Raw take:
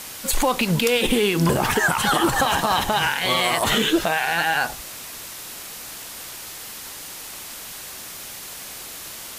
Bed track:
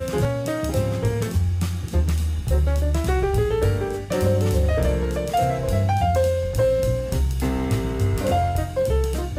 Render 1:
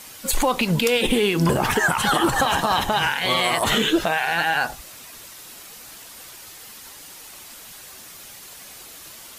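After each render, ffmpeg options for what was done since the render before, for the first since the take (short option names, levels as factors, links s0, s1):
-af "afftdn=nr=7:nf=-37"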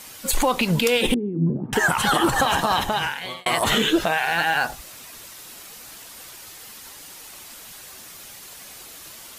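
-filter_complex "[0:a]asettb=1/sr,asplit=3[s0][s1][s2];[s0]atrim=end=1.144[s3];[s1]atrim=start=1.14:end=1.73,asetpts=PTS-STARTPTS,afade=t=in:d=0.004:c=qsin,afade=t=out:st=0.586:d=0.004:c=qsin,asuperpass=centerf=210:order=4:qfactor=1.2[s4];[s2]atrim=start=1.726[s5];[s3][s4]acrossfade=d=0.004:c1=hsin:c2=qsin[s6];[s6][s5]acrossfade=d=0.004:c1=qsin:c2=hsin,asettb=1/sr,asplit=3[s7][s8][s9];[s7]atrim=end=4.244[s10];[s8]atrim=start=4.24:end=5.86,asetpts=PTS-STARTPTS,afade=t=in:d=0.004:c=qsin,afade=t=out:st=1.616:d=0.004:c=qsin,acrusher=bits=8:mode=log:mix=0:aa=0.000001[s11];[s9]atrim=start=5.856[s12];[s10][s11]acrossfade=d=0.004:c1=hsin:c2=qsin[s13];[s13][s12]acrossfade=d=0.004:c1=qsin:c2=hsin,asplit=2[s14][s15];[s14]atrim=end=3.46,asetpts=PTS-STARTPTS,afade=t=out:st=2.53:d=0.93:c=qsin[s16];[s15]atrim=start=3.46,asetpts=PTS-STARTPTS,afade=t=in:d=0.004:c=hsin[s17];[s16][s17]concat=n=2:v=0:a=1"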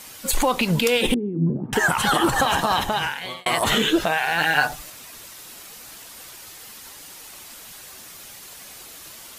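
-filter_complex "[0:a]asettb=1/sr,asplit=3[s0][s1][s2];[s0]atrim=end=4.404[s3];[s1]atrim=start=4.4:end=4.9,asetpts=PTS-STARTPTS,afade=t=in:d=0.004:c=qsin,afade=t=out:st=0.496:d=0.004:c=qsin,aecho=1:1:6.7:0.8,atrim=end_sample=22050[s4];[s2]atrim=start=4.896[s5];[s3][s4]acrossfade=d=0.004:c1=hsin:c2=qsin[s6];[s6][s5]acrossfade=d=0.004:c1=qsin:c2=hsin"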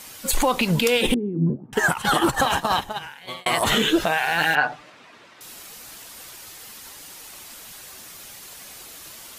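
-filter_complex "[0:a]asplit=3[s0][s1][s2];[s0]afade=t=out:st=1.54:d=0.02[s3];[s1]agate=range=0.251:threshold=0.0794:ratio=16:release=100:detection=peak,afade=t=in:st=1.54:d=0.02,afade=t=out:st=3.27:d=0.02[s4];[s2]afade=t=in:st=3.27:d=0.02[s5];[s3][s4][s5]amix=inputs=3:normalize=0,asettb=1/sr,asplit=3[s6][s7][s8];[s6]atrim=end=4.554[s9];[s7]atrim=start=4.55:end=5.41,asetpts=PTS-STARTPTS,afade=t=in:d=0.004:c=qsin,afade=t=out:st=0.856:d=0.004:c=qsin,highpass=170,lowpass=2500[s10];[s8]atrim=start=5.406[s11];[s9][s10]acrossfade=d=0.004:c1=hsin:c2=qsin[s12];[s12][s11]acrossfade=d=0.004:c1=qsin:c2=hsin"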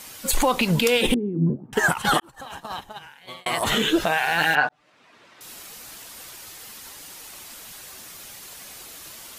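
-filter_complex "[0:a]asplit=3[s0][s1][s2];[s0]atrim=end=2.2,asetpts=PTS-STARTPTS,afade=t=out:st=2.196:d=0.004:c=hsin[s3];[s1]atrim=start=2.2:end=4.69,asetpts=PTS-STARTPTS,afade=t=in:d=1.97,afade=t=out:st=2.486:d=0.004:c=hsin[s4];[s2]atrim=start=4.69,asetpts=PTS-STARTPTS,afade=t=in:d=0.82[s5];[s3][s4][s5]concat=n=3:v=0:a=1"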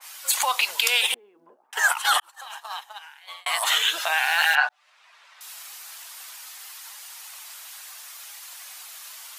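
-af "highpass=f=800:w=0.5412,highpass=f=800:w=1.3066,adynamicequalizer=threshold=0.0224:dfrequency=2300:dqfactor=0.7:tfrequency=2300:tqfactor=0.7:attack=5:release=100:ratio=0.375:range=2:mode=boostabove:tftype=highshelf"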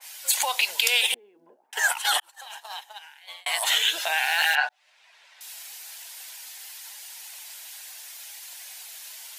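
-af "equalizer=f=1200:t=o:w=0.41:g=-13"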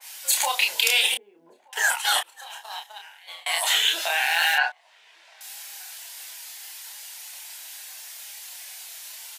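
-filter_complex "[0:a]asplit=2[s0][s1];[s1]adelay=30,volume=0.631[s2];[s0][s2]amix=inputs=2:normalize=0,asplit=2[s3][s4];[s4]adelay=1224,volume=0.0355,highshelf=f=4000:g=-27.6[s5];[s3][s5]amix=inputs=2:normalize=0"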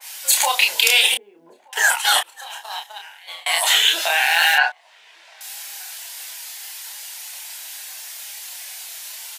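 -af "volume=1.88,alimiter=limit=0.891:level=0:latency=1"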